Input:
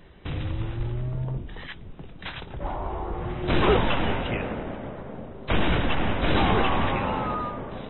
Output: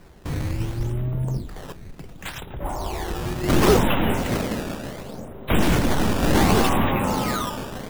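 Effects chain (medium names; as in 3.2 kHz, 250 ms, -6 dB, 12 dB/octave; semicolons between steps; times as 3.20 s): dynamic bell 220 Hz, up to +5 dB, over -36 dBFS, Q 0.91; decimation with a swept rate 12×, swing 160% 0.69 Hz; trim +2 dB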